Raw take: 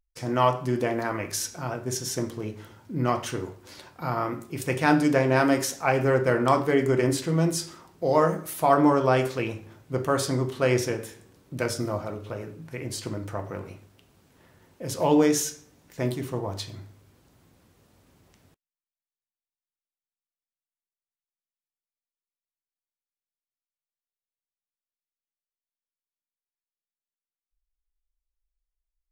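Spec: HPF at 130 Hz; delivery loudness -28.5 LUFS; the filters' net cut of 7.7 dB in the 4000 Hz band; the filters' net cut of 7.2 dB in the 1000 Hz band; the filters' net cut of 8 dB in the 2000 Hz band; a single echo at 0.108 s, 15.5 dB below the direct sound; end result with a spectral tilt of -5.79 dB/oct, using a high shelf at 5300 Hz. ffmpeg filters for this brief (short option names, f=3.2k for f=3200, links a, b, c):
-af "highpass=130,equalizer=f=1k:t=o:g=-8,equalizer=f=2k:t=o:g=-5.5,equalizer=f=4k:t=o:g=-4.5,highshelf=f=5.3k:g=-8,aecho=1:1:108:0.168,volume=-0.5dB"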